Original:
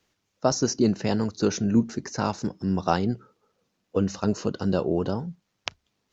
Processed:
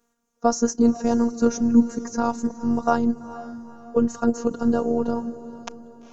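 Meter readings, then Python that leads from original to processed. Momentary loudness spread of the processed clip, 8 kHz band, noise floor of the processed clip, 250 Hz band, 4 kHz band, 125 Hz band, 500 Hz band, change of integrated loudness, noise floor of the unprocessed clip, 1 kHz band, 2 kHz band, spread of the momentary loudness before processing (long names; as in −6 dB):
17 LU, can't be measured, −72 dBFS, +5.0 dB, −6.5 dB, −8.0 dB, +3.0 dB, +3.5 dB, −77 dBFS, +4.0 dB, −1.5 dB, 13 LU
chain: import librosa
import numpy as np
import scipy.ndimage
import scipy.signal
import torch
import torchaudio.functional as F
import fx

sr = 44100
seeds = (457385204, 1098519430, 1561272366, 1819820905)

y = fx.band_shelf(x, sr, hz=3100.0, db=-13.0, octaves=1.7)
y = fx.wow_flutter(y, sr, seeds[0], rate_hz=2.1, depth_cents=48.0)
y = fx.robotise(y, sr, hz=235.0)
y = fx.echo_diffused(y, sr, ms=458, feedback_pct=43, wet_db=-15)
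y = fx.end_taper(y, sr, db_per_s=370.0)
y = y * librosa.db_to_amplitude(5.5)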